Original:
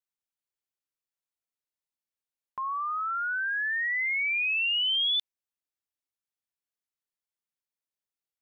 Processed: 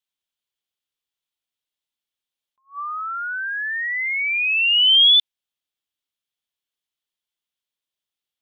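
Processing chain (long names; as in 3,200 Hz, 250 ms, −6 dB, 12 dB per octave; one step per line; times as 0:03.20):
parametric band 3,300 Hz +11.5 dB 0.66 octaves
level that may rise only so fast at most 270 dB per second
level +2 dB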